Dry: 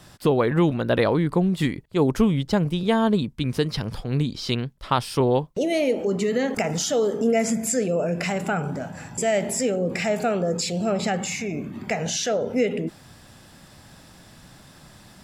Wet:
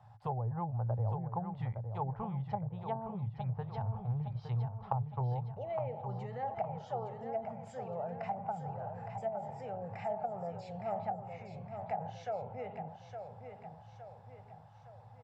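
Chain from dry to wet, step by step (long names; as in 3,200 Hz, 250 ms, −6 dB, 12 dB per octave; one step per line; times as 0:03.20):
pair of resonant band-passes 300 Hz, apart 2.9 octaves
treble cut that deepens with the level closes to 420 Hz, closed at −30 dBFS
repeating echo 863 ms, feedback 47%, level −7.5 dB
level +1 dB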